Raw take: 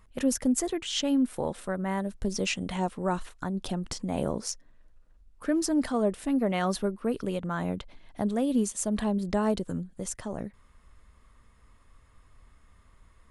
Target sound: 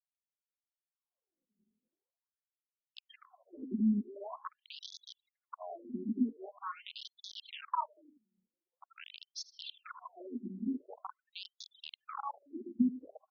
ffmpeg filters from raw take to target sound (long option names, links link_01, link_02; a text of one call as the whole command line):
ffmpeg -i in.wav -filter_complex "[0:a]areverse,equalizer=frequency=100:width=0.97:gain=5,aecho=1:1:2.9:0.89,alimiter=limit=-22.5dB:level=0:latency=1:release=161,acrusher=bits=4:mode=log:mix=0:aa=0.000001,afftfilt=real='re*gte(hypot(re,im),0.0112)':imag='im*gte(hypot(re,im),0.0112)':win_size=1024:overlap=0.75,asplit=2[link_01][link_02];[link_02]aecho=0:1:79|158|237|316:0.112|0.055|0.0269|0.0132[link_03];[link_01][link_03]amix=inputs=2:normalize=0,aeval=exprs='(mod(15*val(0)+1,2)-1)/15':channel_layout=same,acompressor=threshold=-37dB:ratio=6,firequalizer=gain_entry='entry(120,0);entry(230,7);entry(320,-19);entry(1100,1);entry(1800,-26);entry(2800,-8);entry(9700,-20)':delay=0.05:min_phase=1,afftfilt=real='re*between(b*sr/1024,270*pow(4800/270,0.5+0.5*sin(2*PI*0.45*pts/sr))/1.41,270*pow(4800/270,0.5+0.5*sin(2*PI*0.45*pts/sr))*1.41)':imag='im*between(b*sr/1024,270*pow(4800/270,0.5+0.5*sin(2*PI*0.45*pts/sr))/1.41,270*pow(4800/270,0.5+0.5*sin(2*PI*0.45*pts/sr))*1.41)':win_size=1024:overlap=0.75,volume=13dB" out.wav